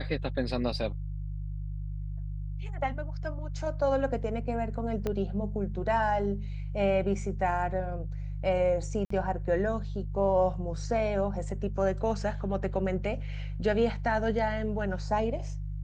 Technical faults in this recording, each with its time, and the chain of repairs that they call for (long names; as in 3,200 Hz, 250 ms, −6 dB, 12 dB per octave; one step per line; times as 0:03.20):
mains hum 50 Hz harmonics 3 −35 dBFS
0:05.07: click −18 dBFS
0:09.05–0:09.10: drop-out 54 ms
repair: click removal
hum removal 50 Hz, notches 3
repair the gap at 0:09.05, 54 ms